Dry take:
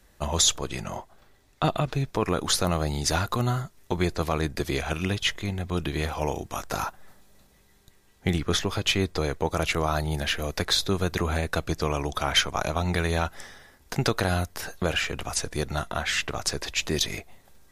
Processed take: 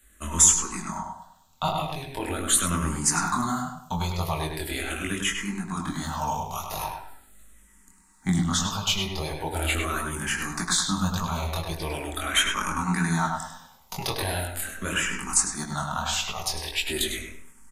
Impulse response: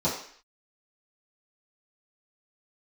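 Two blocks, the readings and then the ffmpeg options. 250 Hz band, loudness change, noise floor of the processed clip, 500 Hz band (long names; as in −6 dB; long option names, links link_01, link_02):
0.0 dB, +1.0 dB, −57 dBFS, −6.5 dB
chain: -filter_complex "[0:a]equalizer=frequency=125:width_type=o:width=1:gain=-12,equalizer=frequency=250:width_type=o:width=1:gain=5,equalizer=frequency=500:width_type=o:width=1:gain=-10,equalizer=frequency=1000:width_type=o:width=1:gain=6,equalizer=frequency=8000:width_type=o:width=1:gain=7,flanger=delay=17.5:depth=6.9:speed=1.6,aexciter=amount=2.5:drive=4.2:freq=7500,asplit=2[link_01][link_02];[link_02]adelay=101,lowpass=frequency=3200:poles=1,volume=-3.5dB,asplit=2[link_03][link_04];[link_04]adelay=101,lowpass=frequency=3200:poles=1,volume=0.33,asplit=2[link_05][link_06];[link_06]adelay=101,lowpass=frequency=3200:poles=1,volume=0.33,asplit=2[link_07][link_08];[link_08]adelay=101,lowpass=frequency=3200:poles=1,volume=0.33[link_09];[link_01][link_03][link_05][link_07][link_09]amix=inputs=5:normalize=0,asplit=2[link_10][link_11];[1:a]atrim=start_sample=2205[link_12];[link_11][link_12]afir=irnorm=-1:irlink=0,volume=-19dB[link_13];[link_10][link_13]amix=inputs=2:normalize=0,asplit=2[link_14][link_15];[link_15]afreqshift=-0.41[link_16];[link_14][link_16]amix=inputs=2:normalize=1,volume=3dB"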